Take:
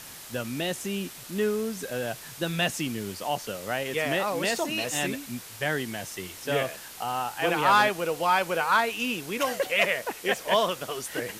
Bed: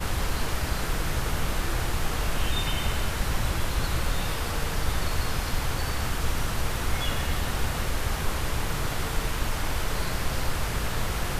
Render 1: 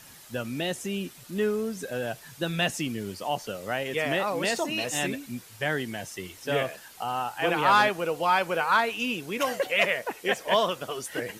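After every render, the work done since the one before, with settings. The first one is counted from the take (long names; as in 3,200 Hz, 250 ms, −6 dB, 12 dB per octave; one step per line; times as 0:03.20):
broadband denoise 8 dB, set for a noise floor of −44 dBFS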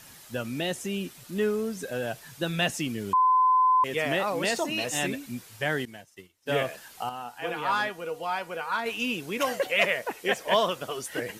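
0:03.13–0:03.84: beep over 1,020 Hz −17.5 dBFS
0:05.85–0:06.50: expander for the loud parts 2.5 to 1, over −46 dBFS
0:07.09–0:08.86: tuned comb filter 240 Hz, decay 0.16 s, mix 70%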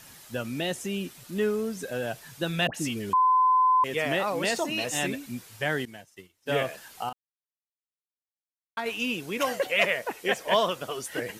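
0:02.67–0:03.10: all-pass dispersion highs, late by 75 ms, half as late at 1,200 Hz
0:07.13–0:08.77: silence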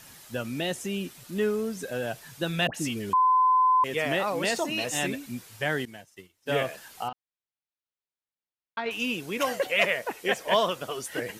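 0:07.08–0:08.91: low-pass filter 4,500 Hz 24 dB per octave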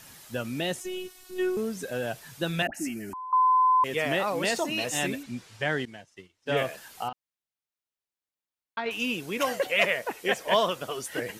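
0:00.80–0:01.57: phases set to zero 369 Hz
0:02.62–0:03.33: phaser with its sweep stopped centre 710 Hz, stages 8
0:05.23–0:06.57: low-pass filter 6,500 Hz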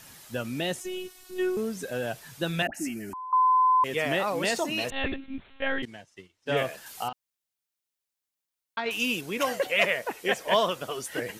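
0:04.90–0:05.83: one-pitch LPC vocoder at 8 kHz 270 Hz
0:06.86–0:09.21: high-shelf EQ 3,600 Hz +7 dB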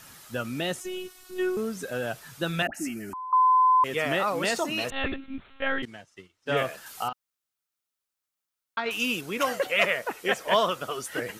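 parametric band 1,300 Hz +7 dB 0.35 octaves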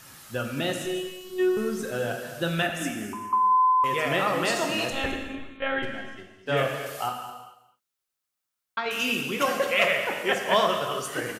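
single-tap delay 214 ms −14 dB
reverb whose tail is shaped and stops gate 470 ms falling, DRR 3 dB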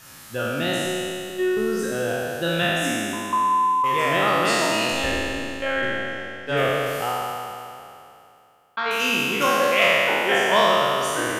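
peak hold with a decay on every bin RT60 2.65 s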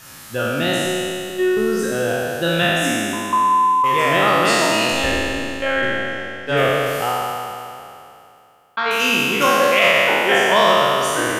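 level +4.5 dB
brickwall limiter −3 dBFS, peak gain reduction 2.5 dB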